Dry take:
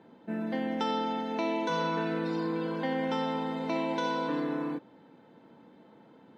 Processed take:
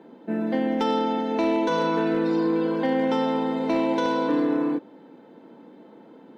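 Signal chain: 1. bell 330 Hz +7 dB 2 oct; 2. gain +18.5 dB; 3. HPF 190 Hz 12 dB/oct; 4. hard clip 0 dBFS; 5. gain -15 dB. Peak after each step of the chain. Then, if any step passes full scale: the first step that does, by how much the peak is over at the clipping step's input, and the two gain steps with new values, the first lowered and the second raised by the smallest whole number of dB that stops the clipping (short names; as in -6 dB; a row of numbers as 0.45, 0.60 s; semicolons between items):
-14.0, +4.5, +4.5, 0.0, -15.0 dBFS; step 2, 4.5 dB; step 2 +13.5 dB, step 5 -10 dB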